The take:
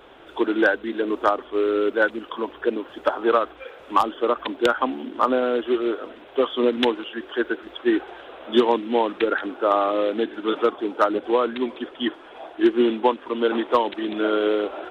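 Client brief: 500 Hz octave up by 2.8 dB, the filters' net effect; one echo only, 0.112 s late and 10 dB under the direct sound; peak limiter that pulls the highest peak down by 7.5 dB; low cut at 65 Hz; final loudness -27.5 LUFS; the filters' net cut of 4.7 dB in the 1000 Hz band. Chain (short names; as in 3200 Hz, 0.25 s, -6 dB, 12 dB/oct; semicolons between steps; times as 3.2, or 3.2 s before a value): HPF 65 Hz; bell 500 Hz +5 dB; bell 1000 Hz -7.5 dB; limiter -12 dBFS; echo 0.112 s -10 dB; gain -4 dB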